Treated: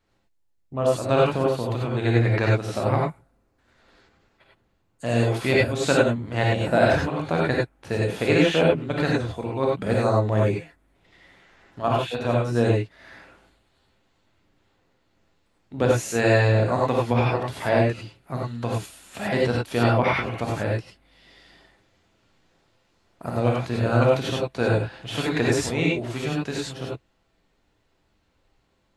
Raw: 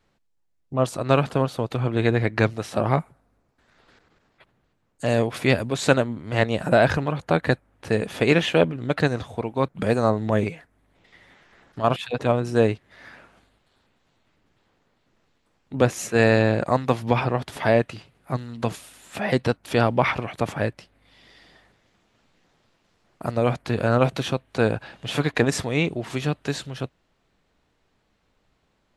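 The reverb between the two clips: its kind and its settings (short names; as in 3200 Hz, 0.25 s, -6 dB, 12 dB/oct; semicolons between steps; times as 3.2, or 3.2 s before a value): non-linear reverb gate 0.12 s rising, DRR -3 dB; gain -5 dB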